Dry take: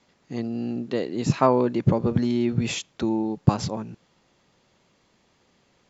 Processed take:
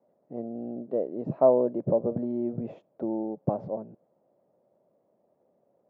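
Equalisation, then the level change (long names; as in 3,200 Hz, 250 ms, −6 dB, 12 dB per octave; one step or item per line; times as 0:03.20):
high-pass filter 150 Hz 12 dB per octave
low-pass with resonance 610 Hz, resonance Q 4.9
−8.5 dB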